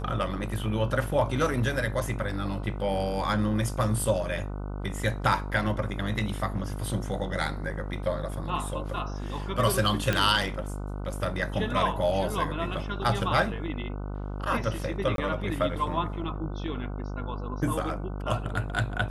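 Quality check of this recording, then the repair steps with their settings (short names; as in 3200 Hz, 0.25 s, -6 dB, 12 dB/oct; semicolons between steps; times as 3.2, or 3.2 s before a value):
buzz 50 Hz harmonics 30 -34 dBFS
10.13 pop -12 dBFS
15.16–15.18 gap 22 ms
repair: de-click; de-hum 50 Hz, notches 30; interpolate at 15.16, 22 ms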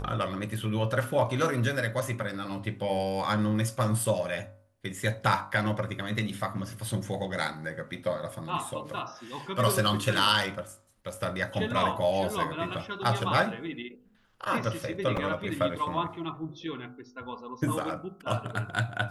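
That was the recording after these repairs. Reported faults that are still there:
none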